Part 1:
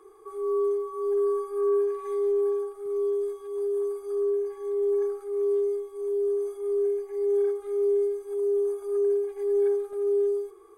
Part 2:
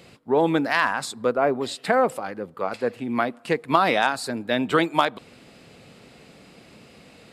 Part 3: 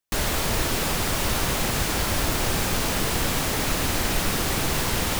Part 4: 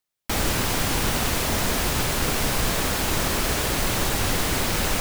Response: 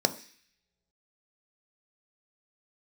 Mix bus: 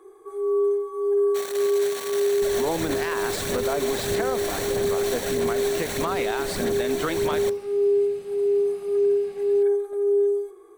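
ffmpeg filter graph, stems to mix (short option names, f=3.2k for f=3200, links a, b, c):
-filter_complex "[0:a]bandreject=f=440:w=12,volume=0dB,asplit=2[a][b];[b]volume=-14dB[c];[1:a]adelay=2300,volume=-3dB[d];[2:a]aphaser=in_gain=1:out_gain=1:delay=3:decay=0.52:speed=1.6:type=sinusoidal,adelay=2300,volume=-11dB,asplit=2[e][f];[f]volume=-10.5dB[g];[3:a]aeval=exprs='max(val(0),0)':c=same,highpass=f=1.3k:p=1,adelay=1050,volume=-7.5dB,asplit=2[h][i];[i]volume=-11dB[j];[4:a]atrim=start_sample=2205[k];[c][g][j]amix=inputs=3:normalize=0[l];[l][k]afir=irnorm=-1:irlink=0[m];[a][d][e][h][m]amix=inputs=5:normalize=0,alimiter=limit=-15.5dB:level=0:latency=1:release=81"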